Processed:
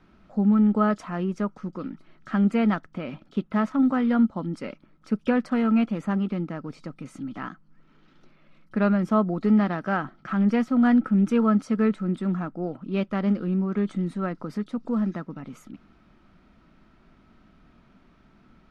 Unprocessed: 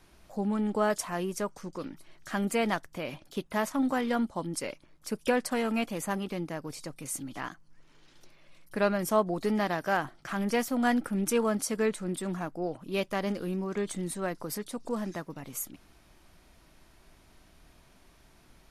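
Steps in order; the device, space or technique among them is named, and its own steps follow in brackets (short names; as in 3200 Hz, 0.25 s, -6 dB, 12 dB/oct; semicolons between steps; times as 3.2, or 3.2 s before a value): inside a cardboard box (LPF 3100 Hz 12 dB/oct; small resonant body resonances 210/1300 Hz, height 12 dB, ringing for 30 ms); gain -1 dB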